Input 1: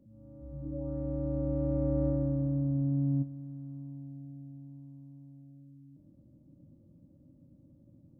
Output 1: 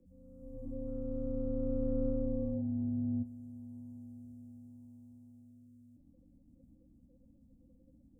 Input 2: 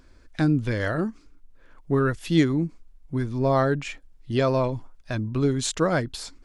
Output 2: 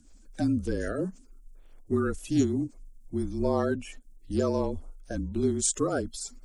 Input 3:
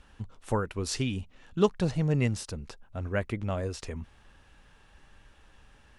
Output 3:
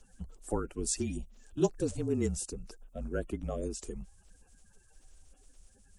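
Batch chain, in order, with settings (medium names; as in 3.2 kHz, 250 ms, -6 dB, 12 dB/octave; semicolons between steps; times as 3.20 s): coarse spectral quantiser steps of 30 dB; frequency shift -34 Hz; ten-band graphic EQ 125 Hz -10 dB, 1 kHz -9 dB, 2 kHz -10 dB, 4 kHz -9 dB, 8 kHz +8 dB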